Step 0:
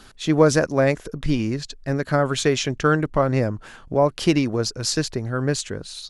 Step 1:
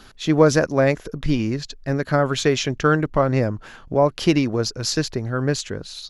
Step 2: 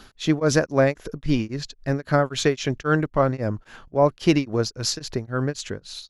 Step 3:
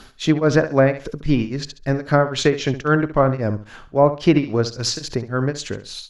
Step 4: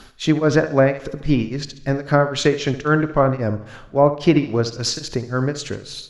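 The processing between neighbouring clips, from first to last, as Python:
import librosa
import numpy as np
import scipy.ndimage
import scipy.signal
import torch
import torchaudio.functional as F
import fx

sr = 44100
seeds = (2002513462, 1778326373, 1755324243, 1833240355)

y1 = fx.peak_eq(x, sr, hz=8700.0, db=-11.5, octaves=0.29)
y1 = y1 * librosa.db_to_amplitude(1.0)
y2 = y1 * np.abs(np.cos(np.pi * 3.7 * np.arange(len(y1)) / sr))
y3 = fx.room_flutter(y2, sr, wall_m=11.6, rt60_s=0.32)
y3 = fx.env_lowpass_down(y3, sr, base_hz=2400.0, full_db=-14.0)
y3 = y3 * librosa.db_to_amplitude(3.5)
y4 = fx.rev_plate(y3, sr, seeds[0], rt60_s=1.4, hf_ratio=1.0, predelay_ms=0, drr_db=16.5)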